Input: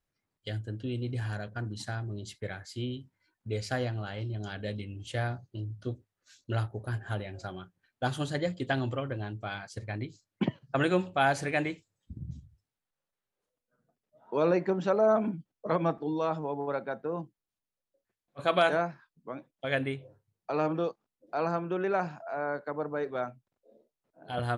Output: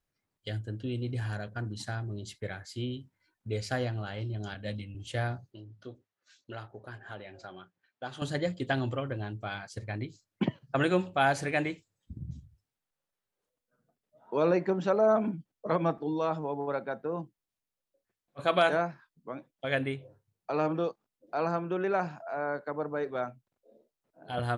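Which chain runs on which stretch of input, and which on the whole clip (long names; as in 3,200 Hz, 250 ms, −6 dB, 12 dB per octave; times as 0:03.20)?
0:04.54–0:04.95: parametric band 400 Hz −12 dB 0.26 octaves + multiband upward and downward expander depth 70%
0:05.52–0:08.22: high-pass filter 410 Hz 6 dB per octave + high-frequency loss of the air 89 metres + downward compressor 1.5 to 1, threshold −44 dBFS
whole clip: no processing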